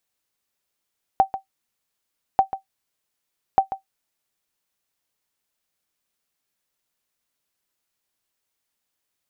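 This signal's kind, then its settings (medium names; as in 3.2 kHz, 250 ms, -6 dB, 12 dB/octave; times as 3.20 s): sonar ping 774 Hz, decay 0.12 s, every 1.19 s, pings 3, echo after 0.14 s, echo -12.5 dB -6 dBFS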